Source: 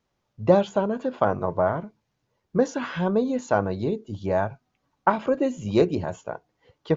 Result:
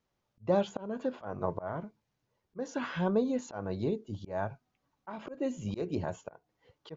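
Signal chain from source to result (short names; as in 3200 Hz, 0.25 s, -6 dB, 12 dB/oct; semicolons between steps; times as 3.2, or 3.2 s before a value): auto swell 0.237 s; gain -5.5 dB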